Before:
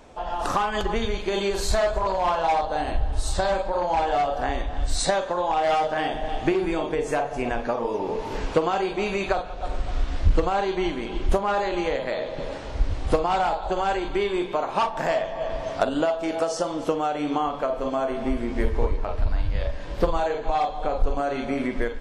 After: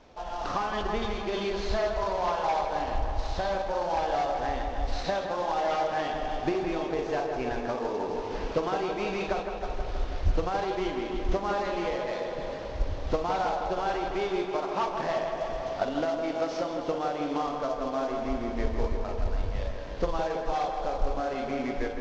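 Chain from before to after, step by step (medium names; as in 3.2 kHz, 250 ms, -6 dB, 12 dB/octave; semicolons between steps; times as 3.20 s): CVSD coder 32 kbps; on a send: tape echo 162 ms, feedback 82%, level -5.5 dB, low-pass 2.8 kHz; on the sum: trim -6 dB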